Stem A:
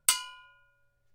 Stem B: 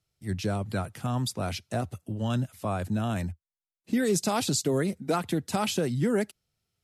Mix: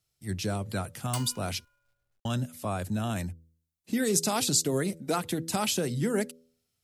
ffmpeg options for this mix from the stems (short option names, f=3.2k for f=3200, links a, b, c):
-filter_complex "[0:a]dynaudnorm=f=110:g=5:m=7dB,acrusher=bits=2:mode=log:mix=0:aa=0.000001,adelay=1050,volume=-12dB[a];[1:a]highshelf=f=4.2k:g=8.5,bandreject=f=81.67:t=h:w=4,bandreject=f=163.34:t=h:w=4,bandreject=f=245.01:t=h:w=4,bandreject=f=326.68:t=h:w=4,bandreject=f=408.35:t=h:w=4,bandreject=f=490.02:t=h:w=4,bandreject=f=571.69:t=h:w=4,volume=-2dB,asplit=3[b][c][d];[b]atrim=end=1.65,asetpts=PTS-STARTPTS,afade=t=out:st=1.646:d=0.004:c=hsin[e];[c]atrim=start=1.65:end=2.25,asetpts=PTS-STARTPTS,volume=0[f];[d]atrim=start=2.25,asetpts=PTS-STARTPTS,afade=t=in:d=0.004:c=hsin[g];[e][f][g]concat=n=3:v=0:a=1[h];[a][h]amix=inputs=2:normalize=0"